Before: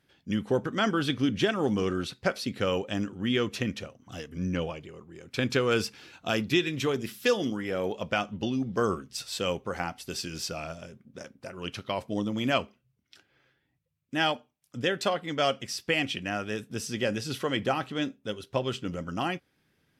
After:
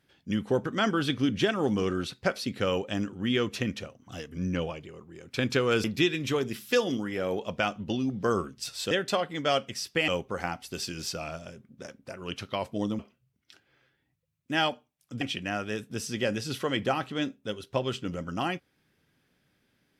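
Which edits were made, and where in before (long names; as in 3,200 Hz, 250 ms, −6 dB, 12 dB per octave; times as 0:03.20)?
0:05.84–0:06.37: remove
0:12.35–0:12.62: remove
0:14.84–0:16.01: move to 0:09.44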